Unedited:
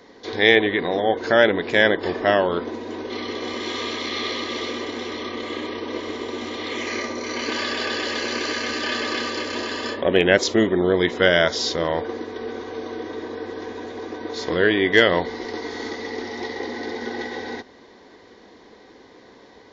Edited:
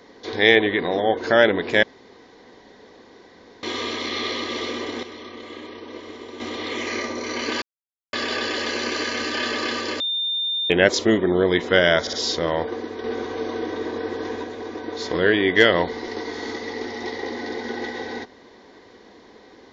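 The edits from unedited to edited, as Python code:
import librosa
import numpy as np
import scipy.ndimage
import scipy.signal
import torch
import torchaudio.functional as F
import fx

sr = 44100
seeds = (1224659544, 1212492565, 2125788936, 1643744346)

y = fx.edit(x, sr, fx.room_tone_fill(start_s=1.83, length_s=1.8),
    fx.clip_gain(start_s=5.03, length_s=1.37, db=-8.0),
    fx.insert_silence(at_s=7.62, length_s=0.51),
    fx.bleep(start_s=9.49, length_s=0.7, hz=3610.0, db=-21.5),
    fx.stutter(start_s=11.5, slice_s=0.06, count=3),
    fx.clip_gain(start_s=12.41, length_s=1.4, db=3.5), tone=tone)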